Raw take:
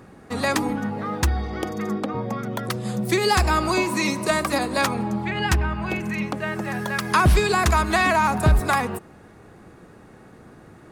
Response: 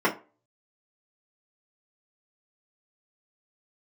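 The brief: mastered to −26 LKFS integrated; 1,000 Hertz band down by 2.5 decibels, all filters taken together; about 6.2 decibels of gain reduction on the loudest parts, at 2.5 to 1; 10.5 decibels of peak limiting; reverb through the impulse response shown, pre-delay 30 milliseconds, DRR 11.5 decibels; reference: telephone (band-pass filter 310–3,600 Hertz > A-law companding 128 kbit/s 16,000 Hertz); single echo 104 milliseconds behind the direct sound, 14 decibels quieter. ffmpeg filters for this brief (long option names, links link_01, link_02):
-filter_complex "[0:a]equalizer=frequency=1000:width_type=o:gain=-3,acompressor=threshold=-22dB:ratio=2.5,alimiter=limit=-22.5dB:level=0:latency=1,aecho=1:1:104:0.2,asplit=2[link_01][link_02];[1:a]atrim=start_sample=2205,adelay=30[link_03];[link_02][link_03]afir=irnorm=-1:irlink=0,volume=-27dB[link_04];[link_01][link_04]amix=inputs=2:normalize=0,highpass=310,lowpass=3600,volume=7dB" -ar 16000 -c:a pcm_alaw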